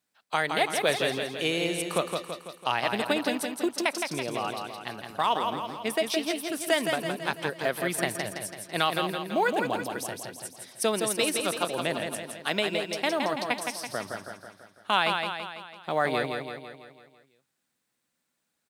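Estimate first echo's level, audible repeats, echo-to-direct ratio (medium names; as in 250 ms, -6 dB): -5.0 dB, 6, -3.5 dB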